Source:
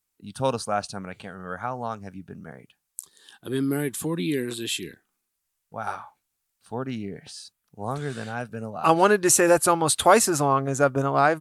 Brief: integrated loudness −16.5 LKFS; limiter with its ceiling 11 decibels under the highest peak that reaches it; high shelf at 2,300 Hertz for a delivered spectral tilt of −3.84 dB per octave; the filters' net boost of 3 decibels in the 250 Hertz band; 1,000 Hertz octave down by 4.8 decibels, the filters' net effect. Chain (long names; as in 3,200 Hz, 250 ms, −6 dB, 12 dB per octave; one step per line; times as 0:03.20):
parametric band 250 Hz +4.5 dB
parametric band 1,000 Hz −8.5 dB
high-shelf EQ 2,300 Hz +7.5 dB
level +8.5 dB
brickwall limiter −3.5 dBFS